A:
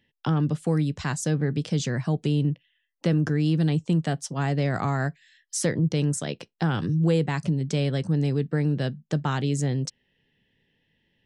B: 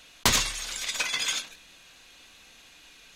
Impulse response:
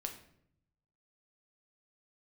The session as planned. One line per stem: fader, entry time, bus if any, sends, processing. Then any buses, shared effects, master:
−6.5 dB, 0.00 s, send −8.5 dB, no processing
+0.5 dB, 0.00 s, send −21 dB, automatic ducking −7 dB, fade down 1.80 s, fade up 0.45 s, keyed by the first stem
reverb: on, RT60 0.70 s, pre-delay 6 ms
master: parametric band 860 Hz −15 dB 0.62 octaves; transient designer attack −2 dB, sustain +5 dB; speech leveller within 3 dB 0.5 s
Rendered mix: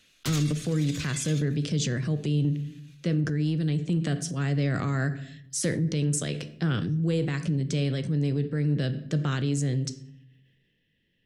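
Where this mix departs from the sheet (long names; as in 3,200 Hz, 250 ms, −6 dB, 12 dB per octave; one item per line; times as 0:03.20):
stem B +0.5 dB → −11.0 dB
reverb return +8.0 dB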